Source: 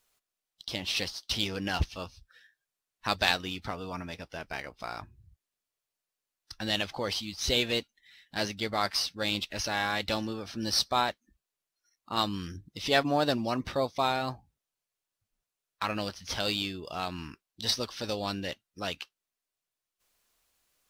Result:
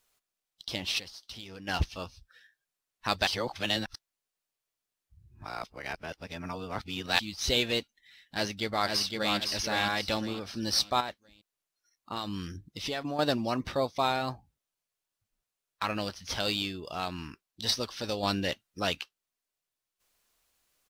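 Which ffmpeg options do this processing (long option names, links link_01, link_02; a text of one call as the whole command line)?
ffmpeg -i in.wav -filter_complex "[0:a]asplit=3[link_01][link_02][link_03];[link_01]afade=type=out:start_time=0.98:duration=0.02[link_04];[link_02]acompressor=threshold=-45dB:ratio=3:attack=3.2:release=140:knee=1:detection=peak,afade=type=in:start_time=0.98:duration=0.02,afade=type=out:start_time=1.67:duration=0.02[link_05];[link_03]afade=type=in:start_time=1.67:duration=0.02[link_06];[link_04][link_05][link_06]amix=inputs=3:normalize=0,asplit=2[link_07][link_08];[link_08]afade=type=in:start_time=8.35:duration=0.01,afade=type=out:start_time=9.37:duration=0.01,aecho=0:1:510|1020|1530|2040:0.630957|0.220835|0.0772923|0.0270523[link_09];[link_07][link_09]amix=inputs=2:normalize=0,asettb=1/sr,asplit=3[link_10][link_11][link_12];[link_10]atrim=end=11.004[link_13];[link_11]atrim=start=11:end=13.19,asetpts=PTS-STARTPTS,afade=type=in:duration=0.004:curve=qsin,afade=type=out:start_time=2.186:duration=0.004:curve=qsin,acompressor=threshold=-30dB:ratio=6:attack=3.2:release=140:knee=1:detection=peak[link_14];[link_12]atrim=start=13.186[link_15];[link_13][link_14]acrossfade=duration=0.004:curve1=hsin:curve2=qsin[link_16];[link_16][link_15]acrossfade=duration=0.004:curve1=qsin:curve2=hsin,asplit=5[link_17][link_18][link_19][link_20][link_21];[link_17]atrim=end=3.272[link_22];[link_18]atrim=start=3.268:end=7.192,asetpts=PTS-STARTPTS,areverse[link_23];[link_19]atrim=start=7.188:end=18.232[link_24];[link_20]atrim=start=18.228:end=19.012,asetpts=PTS-STARTPTS,volume=4.5dB[link_25];[link_21]atrim=start=19.008[link_26];[link_22][link_23]acrossfade=duration=0.004:curve1=hsin:curve2=hsin[link_27];[link_27][link_24]acrossfade=duration=0.004:curve1=hsin:curve2=hsin[link_28];[link_28][link_25]acrossfade=duration=0.004:curve1=hsin:curve2=hsin[link_29];[link_29][link_26]acrossfade=duration=0.004:curve1=hsin:curve2=hsin" out.wav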